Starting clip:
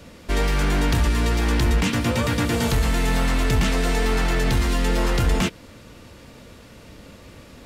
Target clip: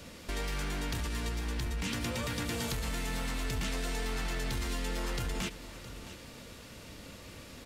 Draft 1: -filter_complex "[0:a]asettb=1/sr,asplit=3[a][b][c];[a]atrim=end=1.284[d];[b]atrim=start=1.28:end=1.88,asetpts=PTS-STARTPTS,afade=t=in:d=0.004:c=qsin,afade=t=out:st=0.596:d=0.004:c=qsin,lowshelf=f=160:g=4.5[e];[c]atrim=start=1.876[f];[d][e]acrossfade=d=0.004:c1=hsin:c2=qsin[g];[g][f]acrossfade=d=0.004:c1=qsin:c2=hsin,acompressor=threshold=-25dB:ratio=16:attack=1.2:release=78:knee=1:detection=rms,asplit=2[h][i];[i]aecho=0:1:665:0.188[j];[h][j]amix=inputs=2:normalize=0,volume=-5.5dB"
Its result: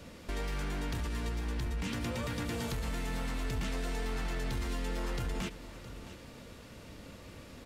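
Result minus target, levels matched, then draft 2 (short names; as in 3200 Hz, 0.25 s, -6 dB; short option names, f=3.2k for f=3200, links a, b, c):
4000 Hz band -3.5 dB
-filter_complex "[0:a]asettb=1/sr,asplit=3[a][b][c];[a]atrim=end=1.284[d];[b]atrim=start=1.28:end=1.88,asetpts=PTS-STARTPTS,afade=t=in:d=0.004:c=qsin,afade=t=out:st=0.596:d=0.004:c=qsin,lowshelf=f=160:g=4.5[e];[c]atrim=start=1.876[f];[d][e]acrossfade=d=0.004:c1=hsin:c2=qsin[g];[g][f]acrossfade=d=0.004:c1=qsin:c2=hsin,acompressor=threshold=-25dB:ratio=16:attack=1.2:release=78:knee=1:detection=rms,highshelf=f=2.1k:g=6.5,asplit=2[h][i];[i]aecho=0:1:665:0.188[j];[h][j]amix=inputs=2:normalize=0,volume=-5.5dB"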